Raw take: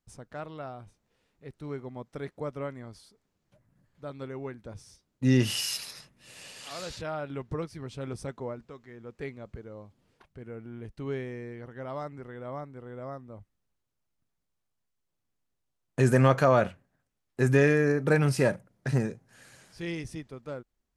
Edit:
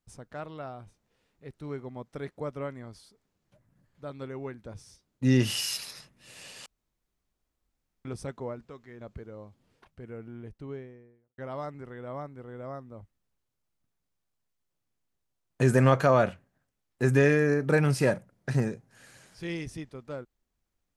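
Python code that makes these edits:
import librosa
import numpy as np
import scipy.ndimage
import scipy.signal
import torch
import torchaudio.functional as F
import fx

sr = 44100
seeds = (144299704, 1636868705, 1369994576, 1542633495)

y = fx.studio_fade_out(x, sr, start_s=10.5, length_s=1.26)
y = fx.edit(y, sr, fx.room_tone_fill(start_s=6.66, length_s=1.39),
    fx.cut(start_s=9.01, length_s=0.38), tone=tone)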